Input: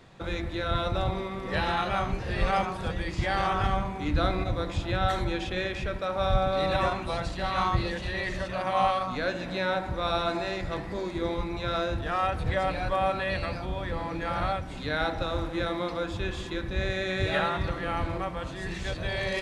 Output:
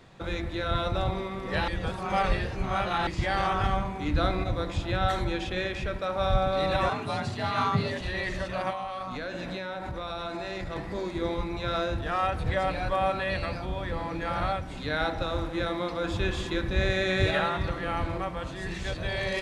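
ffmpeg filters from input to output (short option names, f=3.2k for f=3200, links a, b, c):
-filter_complex "[0:a]asettb=1/sr,asplit=3[a][b][c];[a]atrim=end=6.894[d];[b]atrim=start=6.89:end=8.01,asetpts=PTS-STARTPTS,afade=t=in:d=0.004:c=qsin,afade=t=out:st=1.116:d=0.004:c=qsin,afreqshift=60[e];[c]atrim=start=8.006[f];[d][e]acrossfade=d=0.004:c1=hsin:c2=qsin[g];[g][f]acrossfade=d=0.004:c1=qsin:c2=hsin,asettb=1/sr,asplit=3[h][i][j];[h]atrim=end=8.704[k];[i]atrim=start=8.7:end=10.76,asetpts=PTS-STARTPTS,afade=t=in:d=0.004:c=qsin,afade=t=out:st=2.056:d=0.004:c=qsin,acompressor=threshold=-30dB:ratio=10:attack=3.2:release=140:knee=1:detection=peak[l];[j]atrim=start=10.756[m];[k][l]acrossfade=d=0.004:c1=hsin:c2=qsin[n];[n][m]acrossfade=d=0.004:c1=qsin:c2=hsin,asplit=5[o][p][q][r][s];[o]atrim=end=1.682[t];[p]atrim=start=1.678:end=3.072,asetpts=PTS-STARTPTS,areverse[u];[q]atrim=start=3.068:end=16.042[v];[r]atrim=start=16.038:end=17.312,asetpts=PTS-STARTPTS,volume=3.5dB[w];[s]atrim=start=17.308[x];[t][u]acrossfade=d=0.004:c1=hsin:c2=hsin[y];[y][v]acrossfade=d=0.004:c1=hsin:c2=hsin[z];[z][w]acrossfade=d=0.004:c1=hsin:c2=hsin[aa];[aa][x]acrossfade=d=0.004:c1=hsin:c2=hsin"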